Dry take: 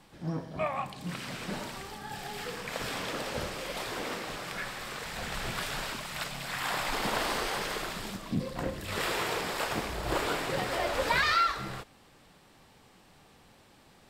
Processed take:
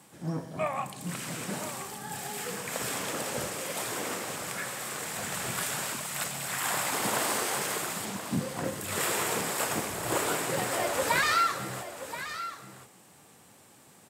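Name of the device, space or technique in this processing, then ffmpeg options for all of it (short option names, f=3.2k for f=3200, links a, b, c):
budget condenser microphone: -filter_complex "[0:a]highpass=f=96:w=0.5412,highpass=f=96:w=1.3066,highshelf=f=5.9k:t=q:w=1.5:g=8.5,asettb=1/sr,asplit=3[a][b][c];[a]atrim=end=8.054[d];[b]atrim=start=8.05:end=8.65,asetpts=PTS-STARTPTS,afade=t=in:d=0.004:c=qsin,afade=t=out:st=0.596:d=0.004:c=qsin,lowpass=6.3k[e];[c]atrim=start=8.646[f];[d][e]acrossfade=d=0.004:c1=hsin:c2=qsin[g];[g][f]acrossfade=d=0.004:c1=qsin:c2=hsin,aecho=1:1:1028:0.266,volume=1dB"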